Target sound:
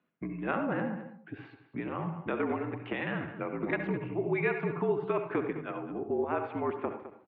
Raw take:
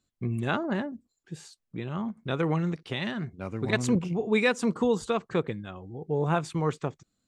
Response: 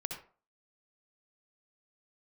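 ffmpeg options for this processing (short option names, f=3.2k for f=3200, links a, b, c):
-filter_complex "[0:a]acompressor=threshold=-37dB:ratio=3,highpass=f=260:t=q:w=0.5412,highpass=f=260:t=q:w=1.307,lowpass=f=2.6k:t=q:w=0.5176,lowpass=f=2.6k:t=q:w=0.7071,lowpass=f=2.6k:t=q:w=1.932,afreqshift=-54,asplit=2[a][b];[b]adelay=209.9,volume=-13dB,highshelf=f=4k:g=-4.72[c];[a][c]amix=inputs=2:normalize=0,asplit=2[d][e];[1:a]atrim=start_sample=2205,asetrate=41454,aresample=44100[f];[e][f]afir=irnorm=-1:irlink=0,volume=1.5dB[g];[d][g]amix=inputs=2:normalize=0,volume=1.5dB"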